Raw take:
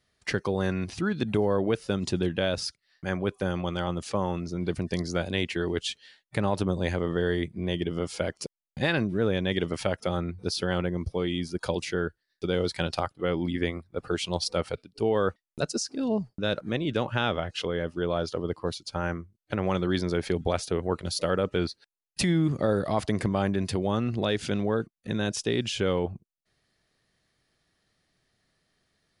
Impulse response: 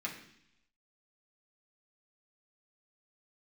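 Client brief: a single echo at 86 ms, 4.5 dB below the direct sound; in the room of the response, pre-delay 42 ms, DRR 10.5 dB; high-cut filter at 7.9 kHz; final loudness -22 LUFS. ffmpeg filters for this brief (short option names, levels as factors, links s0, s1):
-filter_complex "[0:a]lowpass=7900,aecho=1:1:86:0.596,asplit=2[s0][s1];[1:a]atrim=start_sample=2205,adelay=42[s2];[s1][s2]afir=irnorm=-1:irlink=0,volume=0.237[s3];[s0][s3]amix=inputs=2:normalize=0,volume=1.88"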